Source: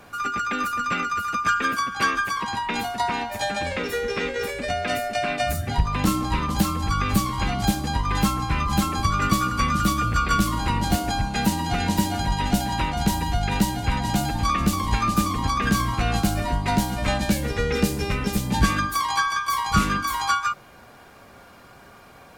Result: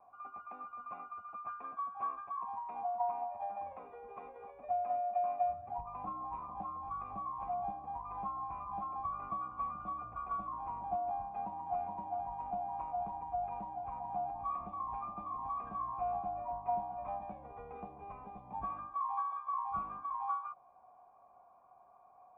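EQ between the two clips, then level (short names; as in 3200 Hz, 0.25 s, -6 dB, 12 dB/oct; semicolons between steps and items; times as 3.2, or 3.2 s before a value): vocal tract filter a; -3.5 dB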